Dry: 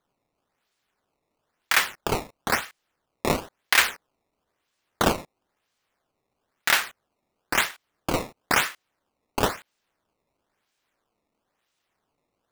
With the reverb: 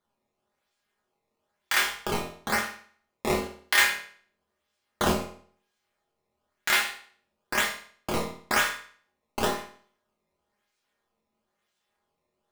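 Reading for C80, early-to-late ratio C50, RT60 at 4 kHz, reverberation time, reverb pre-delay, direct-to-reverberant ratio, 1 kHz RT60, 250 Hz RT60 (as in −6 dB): 10.5 dB, 6.5 dB, 0.50 s, 0.50 s, 5 ms, −2.0 dB, 0.50 s, 0.50 s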